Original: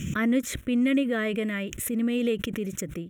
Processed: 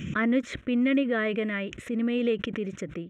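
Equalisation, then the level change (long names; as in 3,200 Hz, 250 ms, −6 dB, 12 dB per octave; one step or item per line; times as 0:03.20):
head-to-tape spacing loss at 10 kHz 40 dB
spectral tilt +3 dB per octave
+6.0 dB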